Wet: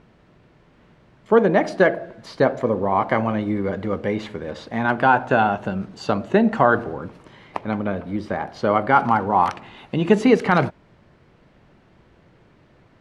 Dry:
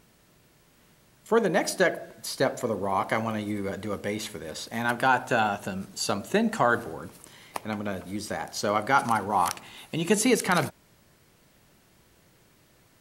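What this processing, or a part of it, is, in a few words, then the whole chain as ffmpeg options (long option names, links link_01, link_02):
phone in a pocket: -filter_complex "[0:a]lowpass=3400,highshelf=frequency=2000:gain=-8.5,asettb=1/sr,asplit=3[link_01][link_02][link_03];[link_01]atrim=end=7.844[link_04];[link_02]atrim=start=7.84:end=9.12,asetpts=PTS-STARTPTS,afade=type=in:duration=0.004:curve=qsin,afade=type=out:start_time=1.276:duration=0.004:curve=qsin,equalizer=frequency=6900:width=1.4:gain=-5.5[link_05];[link_03]atrim=start=9.116[link_06];[link_04][link_05]acrossfade=duration=0.004:curve1=hsin:curve2=qsin[link_07];[link_07][link_06]acrossfade=duration=0.004:curve1=qsin:curve2=hsin,volume=8dB"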